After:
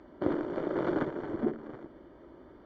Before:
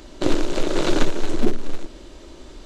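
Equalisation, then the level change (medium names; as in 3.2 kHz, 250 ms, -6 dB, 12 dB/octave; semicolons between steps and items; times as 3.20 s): Savitzky-Golay filter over 41 samples; high-pass 99 Hz 12 dB/octave; distance through air 130 m; -7.0 dB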